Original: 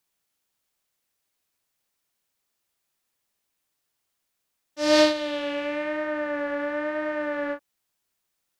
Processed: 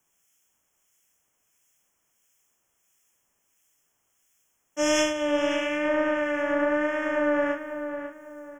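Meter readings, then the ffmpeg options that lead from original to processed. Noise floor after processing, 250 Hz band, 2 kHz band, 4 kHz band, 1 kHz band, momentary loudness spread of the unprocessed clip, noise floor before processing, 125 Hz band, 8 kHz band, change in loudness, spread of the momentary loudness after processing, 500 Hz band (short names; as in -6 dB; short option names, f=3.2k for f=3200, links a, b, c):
-74 dBFS, +1.0 dB, +2.0 dB, -3.5 dB, +1.5 dB, 10 LU, -79 dBFS, n/a, +5.0 dB, 0.0 dB, 11 LU, +0.5 dB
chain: -filter_complex "[0:a]acrossover=split=120[a][b];[b]acompressor=threshold=-30dB:ratio=2[c];[a][c]amix=inputs=2:normalize=0,asplit=2[d][e];[e]aeval=exprs='clip(val(0),-1,0.0168)':c=same,volume=-9dB[f];[d][f]amix=inputs=2:normalize=0,asuperstop=centerf=4200:order=20:qfactor=2.5,equalizer=f=6.9k:w=3.4:g=8.5,acrossover=split=1700[g][h];[g]aeval=exprs='val(0)*(1-0.5/2+0.5/2*cos(2*PI*1.5*n/s))':c=same[i];[h]aeval=exprs='val(0)*(1-0.5/2-0.5/2*cos(2*PI*1.5*n/s))':c=same[j];[i][j]amix=inputs=2:normalize=0,asplit=2[k][l];[l]adelay=548,lowpass=f=2.2k:p=1,volume=-8.5dB,asplit=2[m][n];[n]adelay=548,lowpass=f=2.2k:p=1,volume=0.35,asplit=2[o][p];[p]adelay=548,lowpass=f=2.2k:p=1,volume=0.35,asplit=2[q][r];[r]adelay=548,lowpass=f=2.2k:p=1,volume=0.35[s];[m][o][q][s]amix=inputs=4:normalize=0[t];[k][t]amix=inputs=2:normalize=0,volume=6dB"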